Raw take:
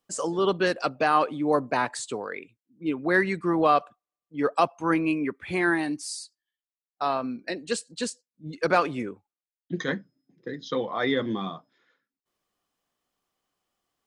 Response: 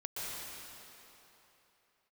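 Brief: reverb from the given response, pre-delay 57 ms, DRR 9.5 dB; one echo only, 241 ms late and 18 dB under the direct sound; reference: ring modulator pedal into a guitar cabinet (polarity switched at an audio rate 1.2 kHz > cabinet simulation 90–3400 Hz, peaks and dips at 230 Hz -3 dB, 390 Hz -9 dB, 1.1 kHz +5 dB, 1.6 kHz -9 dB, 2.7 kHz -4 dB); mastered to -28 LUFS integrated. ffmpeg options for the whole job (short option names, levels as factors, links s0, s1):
-filter_complex "[0:a]aecho=1:1:241:0.126,asplit=2[s0][s1];[1:a]atrim=start_sample=2205,adelay=57[s2];[s1][s2]afir=irnorm=-1:irlink=0,volume=0.237[s3];[s0][s3]amix=inputs=2:normalize=0,aeval=exprs='val(0)*sgn(sin(2*PI*1200*n/s))':c=same,highpass=90,equalizer=f=230:t=q:w=4:g=-3,equalizer=f=390:t=q:w=4:g=-9,equalizer=f=1100:t=q:w=4:g=5,equalizer=f=1600:t=q:w=4:g=-9,equalizer=f=2700:t=q:w=4:g=-4,lowpass=f=3400:w=0.5412,lowpass=f=3400:w=1.3066,volume=1.06"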